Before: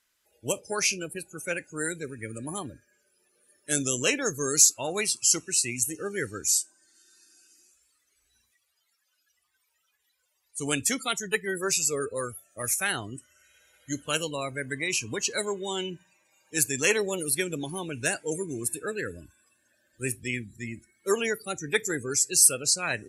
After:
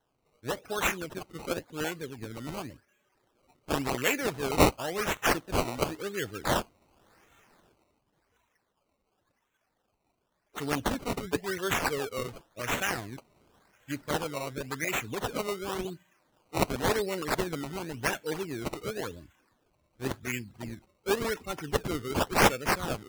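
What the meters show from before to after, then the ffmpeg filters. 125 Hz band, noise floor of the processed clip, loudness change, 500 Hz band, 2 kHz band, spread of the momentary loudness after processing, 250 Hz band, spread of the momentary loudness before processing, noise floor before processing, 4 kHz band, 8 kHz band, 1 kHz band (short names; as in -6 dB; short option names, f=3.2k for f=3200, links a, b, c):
+2.0 dB, -77 dBFS, -4.5 dB, -0.5 dB, -1.5 dB, 13 LU, +0.5 dB, 15 LU, -75 dBFS, -4.0 dB, -15.0 dB, +6.0 dB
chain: -af "acrusher=samples=18:mix=1:aa=0.000001:lfo=1:lforange=18:lforate=0.92,volume=-2.5dB"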